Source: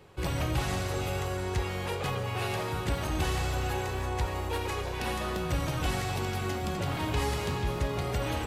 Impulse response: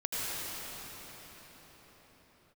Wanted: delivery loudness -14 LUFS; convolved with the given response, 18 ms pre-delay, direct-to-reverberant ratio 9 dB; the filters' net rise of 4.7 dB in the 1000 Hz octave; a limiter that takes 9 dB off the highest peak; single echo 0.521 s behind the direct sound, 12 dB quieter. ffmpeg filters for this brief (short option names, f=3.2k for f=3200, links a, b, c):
-filter_complex "[0:a]equalizer=f=1k:t=o:g=6,alimiter=level_in=1.5dB:limit=-24dB:level=0:latency=1,volume=-1.5dB,aecho=1:1:521:0.251,asplit=2[a][b];[1:a]atrim=start_sample=2205,adelay=18[c];[b][c]afir=irnorm=-1:irlink=0,volume=-17dB[d];[a][d]amix=inputs=2:normalize=0,volume=19.5dB"